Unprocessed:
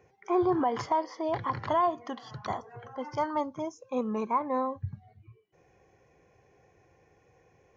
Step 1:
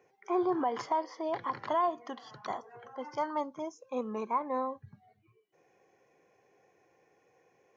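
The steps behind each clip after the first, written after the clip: high-pass 240 Hz 12 dB/octave; trim -3 dB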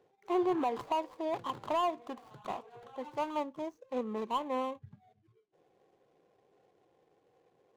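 median filter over 25 samples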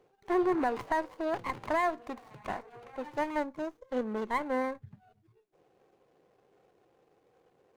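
sliding maximum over 9 samples; trim +2.5 dB

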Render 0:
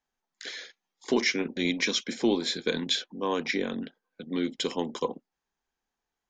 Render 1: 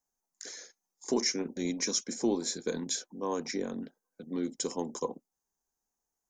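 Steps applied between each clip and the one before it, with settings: FFT filter 930 Hz 0 dB, 3.3 kHz -14 dB, 6.2 kHz +10 dB; trim -4 dB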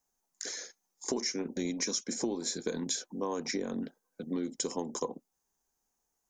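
compression 6:1, threshold -35 dBFS, peak gain reduction 11.5 dB; trim +5 dB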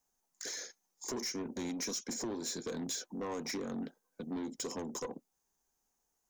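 saturation -33.5 dBFS, distortion -9 dB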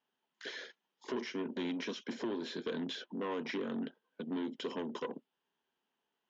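cabinet simulation 250–3200 Hz, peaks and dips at 310 Hz -4 dB, 520 Hz -5 dB, 760 Hz -9 dB, 1.2 kHz -5 dB, 2.2 kHz -5 dB, 3.1 kHz +8 dB; trim +6 dB

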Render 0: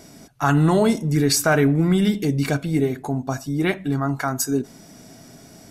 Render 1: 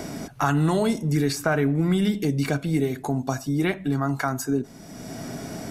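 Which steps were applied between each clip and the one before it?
three bands compressed up and down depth 70%; trim -3.5 dB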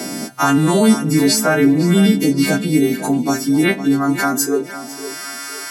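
partials quantised in pitch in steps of 2 st; high-pass sweep 220 Hz -> 1.3 kHz, 4.22–5.16 s; tape echo 507 ms, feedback 37%, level -11.5 dB, low-pass 3.8 kHz; trim +5.5 dB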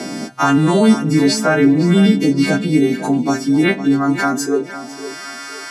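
distance through air 69 m; trim +1 dB

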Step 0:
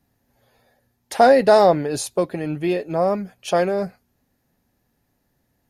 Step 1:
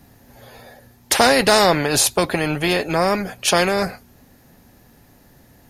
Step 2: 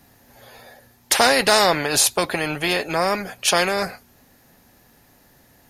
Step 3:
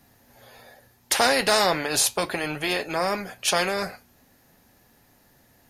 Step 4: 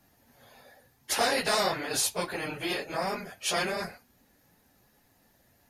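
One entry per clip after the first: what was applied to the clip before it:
spectrum-flattening compressor 2:1; trim +2 dB
bass shelf 440 Hz -7.5 dB
flange 0.36 Hz, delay 8.6 ms, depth 2.8 ms, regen -74%
phase randomisation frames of 50 ms; trim -6 dB

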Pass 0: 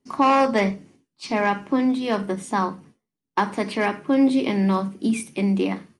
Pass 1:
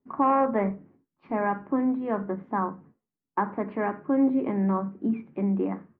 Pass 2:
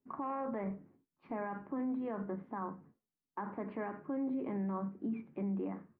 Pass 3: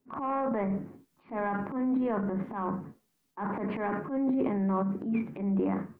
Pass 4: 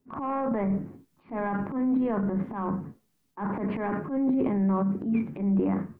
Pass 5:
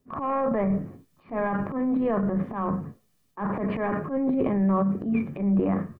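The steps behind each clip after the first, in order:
low-pass 1.6 kHz 24 dB/octave; trim -4.5 dB
peak limiter -24 dBFS, peak gain reduction 11.5 dB; trim -6.5 dB
transient shaper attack -11 dB, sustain +9 dB; trim +8.5 dB
bass shelf 210 Hz +8 dB
comb 1.7 ms, depth 35%; trim +3 dB

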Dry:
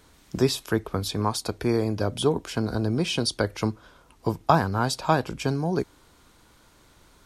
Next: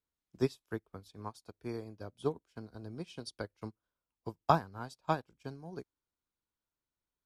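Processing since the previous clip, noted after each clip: upward expansion 2.5:1, over -37 dBFS; trim -5 dB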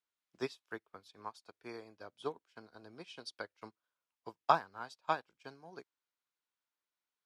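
band-pass filter 2.1 kHz, Q 0.52; trim +2.5 dB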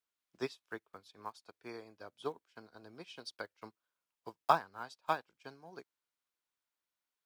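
block-companded coder 7-bit

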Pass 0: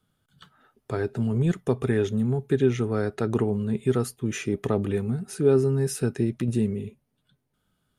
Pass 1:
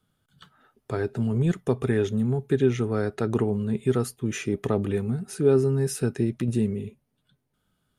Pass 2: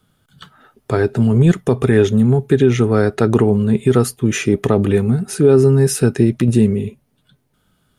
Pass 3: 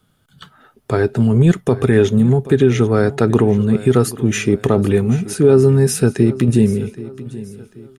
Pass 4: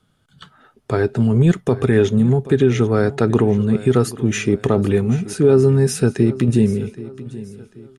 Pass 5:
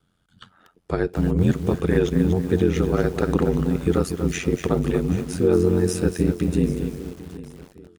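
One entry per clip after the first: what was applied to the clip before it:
no audible change
loudness maximiser +12.5 dB; trim -1 dB
feedback delay 781 ms, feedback 38%, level -17 dB
low-pass 9.4 kHz 12 dB/octave; trim -2 dB
ring modulator 44 Hz; bit-crushed delay 238 ms, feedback 35%, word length 6-bit, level -8.5 dB; trim -2.5 dB

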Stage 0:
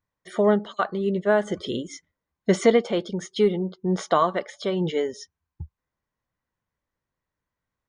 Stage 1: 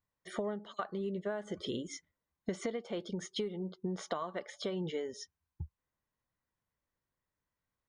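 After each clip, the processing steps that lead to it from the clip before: compression 16:1, threshold -28 dBFS, peak gain reduction 17 dB; trim -5 dB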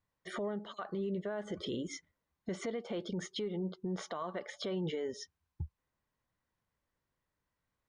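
treble shelf 7.2 kHz -11 dB; peak limiter -33.5 dBFS, peak gain reduction 11 dB; trim +4 dB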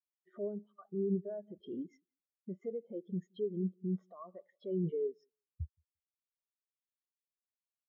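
feedback delay 173 ms, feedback 33%, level -15 dB; spectral contrast expander 2.5:1; trim +4 dB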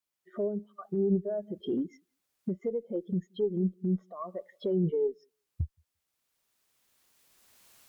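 recorder AGC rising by 14 dB/s; Chebyshev shaper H 2 -29 dB, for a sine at -23.5 dBFS; trim +6.5 dB

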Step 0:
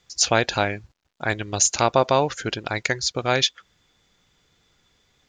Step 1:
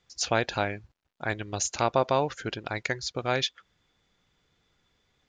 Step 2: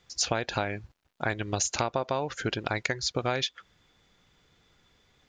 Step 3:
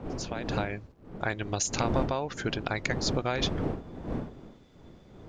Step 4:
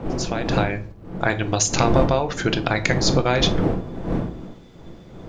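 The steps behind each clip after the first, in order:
treble shelf 5.9 kHz -10 dB; trim -5.5 dB
compression 10:1, threshold -30 dBFS, peak gain reduction 13 dB; trim +6 dB
fade-in on the opening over 0.76 s; wind noise 330 Hz -34 dBFS; trim -1.5 dB
simulated room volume 360 m³, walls furnished, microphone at 0.72 m; trim +9 dB

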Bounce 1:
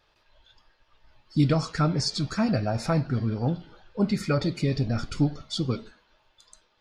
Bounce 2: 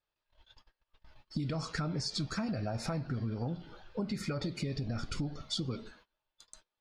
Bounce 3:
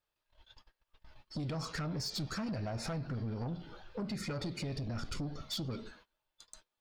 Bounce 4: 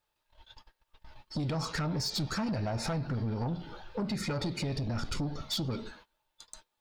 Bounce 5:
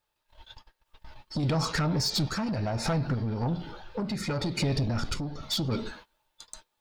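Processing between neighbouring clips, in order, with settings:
gate -56 dBFS, range -23 dB; peak limiter -18.5 dBFS, peak gain reduction 8 dB; compression, threshold -32 dBFS, peak gain reduction 9.5 dB
saturation -33.5 dBFS, distortion -12 dB; trim +1 dB
small resonant body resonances 880/3800 Hz, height 8 dB, ringing for 45 ms; trim +5 dB
random-step tremolo; trim +6.5 dB

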